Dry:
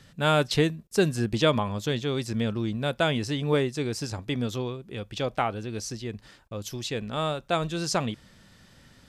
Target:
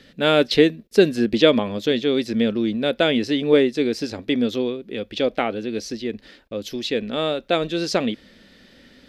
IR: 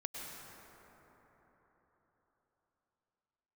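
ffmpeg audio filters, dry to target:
-af "equalizer=f=125:t=o:w=1:g=-11,equalizer=f=250:t=o:w=1:g=10,equalizer=f=500:t=o:w=1:g=8,equalizer=f=1000:t=o:w=1:g=-6,equalizer=f=2000:t=o:w=1:g=6,equalizer=f=4000:t=o:w=1:g=7,equalizer=f=8000:t=o:w=1:g=-8,volume=1.12"

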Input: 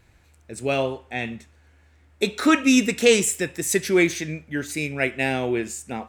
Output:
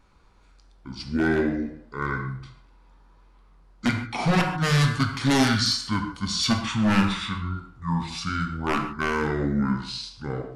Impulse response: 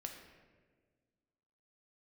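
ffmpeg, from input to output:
-filter_complex "[0:a]aeval=exprs='0.2*(abs(mod(val(0)/0.2+3,4)-2)-1)':c=same[s0];[1:a]atrim=start_sample=2205,atrim=end_sample=3969[s1];[s0][s1]afir=irnorm=-1:irlink=0,asetrate=25442,aresample=44100,volume=1.5"

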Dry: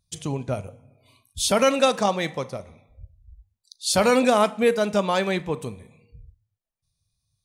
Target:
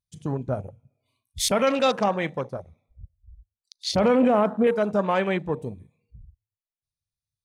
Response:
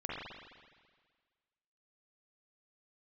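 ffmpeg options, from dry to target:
-filter_complex "[0:a]asettb=1/sr,asplit=3[s0][s1][s2];[s0]atrim=end=3.914[s3];[s1]atrim=start=3.91:end=4.67,asetpts=PTS-STARTPTS,afade=t=in:d=0.004:c=qsin,afade=t=out:st=0.756:d=0.004:c=qsin,tiltshelf=f=1100:g=5.5[s4];[s2]atrim=start=4.666[s5];[s3][s4]acrossfade=d=0.004:c1=hsin:c2=qsin[s6];[s6][s5]acrossfade=d=0.004:c1=qsin:c2=hsin,alimiter=limit=0.282:level=0:latency=1:release=17,afwtdn=0.0251"

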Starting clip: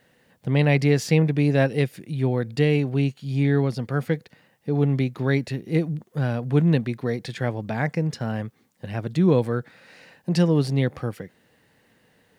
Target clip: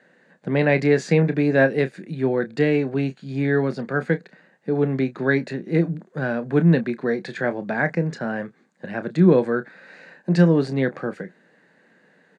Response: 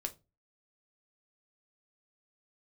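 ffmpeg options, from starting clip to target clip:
-filter_complex "[0:a]highpass=f=170:w=0.5412,highpass=f=170:w=1.3066,equalizer=f=180:t=q:w=4:g=6,equalizer=f=370:t=q:w=4:g=4,equalizer=f=590:t=q:w=4:g=4,equalizer=f=1600:t=q:w=4:g=9,equalizer=f=3100:t=q:w=4:g=-8,equalizer=f=5400:t=q:w=4:g=-10,lowpass=f=7100:w=0.5412,lowpass=f=7100:w=1.3066,asplit=2[s0][s1];[s1]adelay=30,volume=0.251[s2];[s0][s2]amix=inputs=2:normalize=0,volume=1.12"

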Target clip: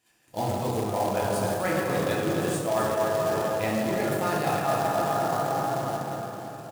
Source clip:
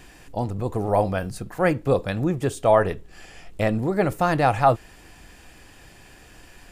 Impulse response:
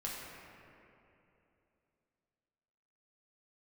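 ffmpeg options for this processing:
-filter_complex "[0:a]crystalizer=i=3:c=0,agate=range=0.0501:threshold=0.01:ratio=16:detection=peak,highpass=130,highshelf=f=5600:g=-5.5,bandreject=f=60:t=h:w=6,bandreject=f=120:t=h:w=6,bandreject=f=180:t=h:w=6,bandreject=f=240:t=h:w=6,bandreject=f=300:t=h:w=6,bandreject=f=360:t=h:w=6,bandreject=f=420:t=h:w=6,bandreject=f=480:t=h:w=6[s0];[1:a]atrim=start_sample=2205,asetrate=28224,aresample=44100[s1];[s0][s1]afir=irnorm=-1:irlink=0,acrusher=bits=3:mode=log:mix=0:aa=0.000001,aecho=1:1:256:0.376,areverse,acompressor=threshold=0.0708:ratio=6,areverse"

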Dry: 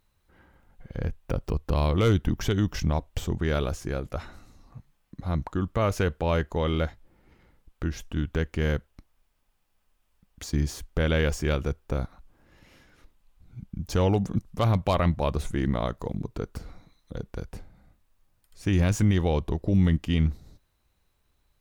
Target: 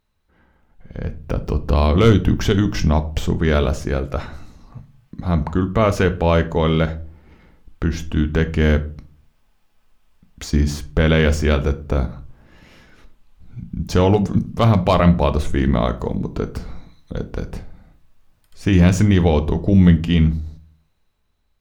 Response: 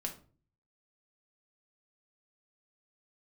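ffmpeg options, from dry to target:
-filter_complex "[0:a]dynaudnorm=f=190:g=13:m=3.35,asplit=2[s0][s1];[1:a]atrim=start_sample=2205,lowpass=7200[s2];[s1][s2]afir=irnorm=-1:irlink=0,volume=0.891[s3];[s0][s3]amix=inputs=2:normalize=0,volume=0.562"

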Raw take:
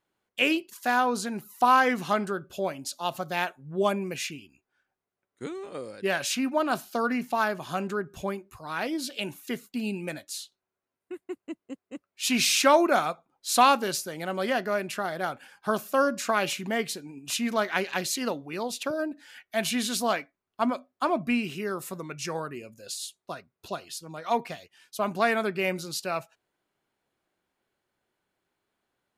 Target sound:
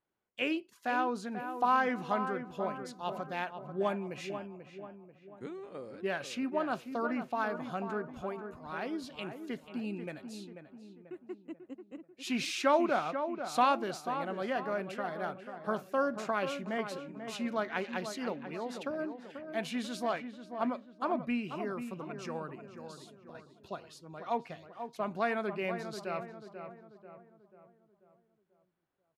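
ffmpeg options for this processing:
-filter_complex "[0:a]aemphasis=mode=reproduction:type=75kf,asettb=1/sr,asplit=3[s0][s1][s2];[s0]atrim=end=22.554[s3];[s1]atrim=start=22.55:end=23.35,asetpts=PTS-STARTPTS,afade=t=in:d=0.004:c=qsin,afade=t=out:st=0.796:d=0.004:c=qsin,acompressor=threshold=0.00501:ratio=6[s4];[s2]atrim=start=23.346[s5];[s3][s4]acrossfade=d=0.004:c1=hsin:c2=qsin[s6];[s6][s5]acrossfade=d=0.004:c1=qsin:c2=hsin,asplit=2[s7][s8];[s8]adelay=489,lowpass=f=1700:p=1,volume=0.398,asplit=2[s9][s10];[s10]adelay=489,lowpass=f=1700:p=1,volume=0.49,asplit=2[s11][s12];[s12]adelay=489,lowpass=f=1700:p=1,volume=0.49,asplit=2[s13][s14];[s14]adelay=489,lowpass=f=1700:p=1,volume=0.49,asplit=2[s15][s16];[s16]adelay=489,lowpass=f=1700:p=1,volume=0.49,asplit=2[s17][s18];[s18]adelay=489,lowpass=f=1700:p=1,volume=0.49[s19];[s7][s9][s11][s13][s15][s17][s19]amix=inputs=7:normalize=0,volume=0.473"

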